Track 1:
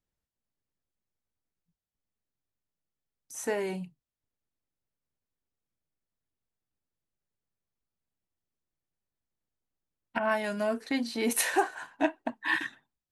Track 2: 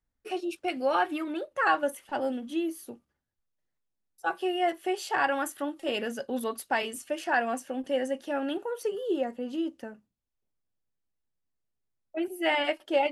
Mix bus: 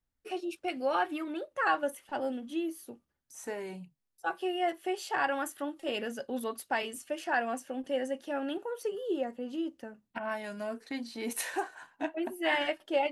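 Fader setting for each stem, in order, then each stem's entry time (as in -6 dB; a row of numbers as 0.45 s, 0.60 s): -7.5 dB, -3.5 dB; 0.00 s, 0.00 s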